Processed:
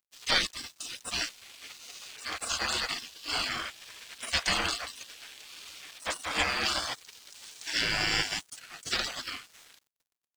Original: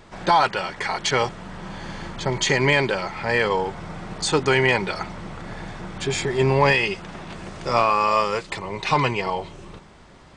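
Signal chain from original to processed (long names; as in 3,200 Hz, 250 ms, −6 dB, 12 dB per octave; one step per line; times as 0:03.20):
gate on every frequency bin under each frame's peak −25 dB weak
dead-zone distortion −56 dBFS
level +9 dB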